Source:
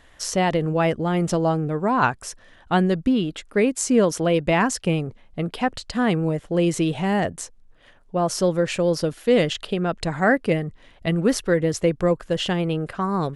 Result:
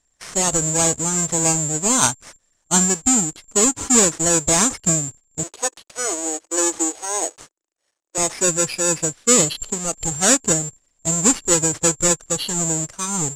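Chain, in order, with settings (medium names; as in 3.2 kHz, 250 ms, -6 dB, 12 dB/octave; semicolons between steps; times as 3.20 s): square wave that keeps the level; 5.43–8.18 s: elliptic high-pass 320 Hz; careless resampling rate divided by 6×, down none, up zero stuff; low-pass 8.7 kHz 24 dB/octave; gate -31 dBFS, range -11 dB; spectral noise reduction 9 dB; trim -5 dB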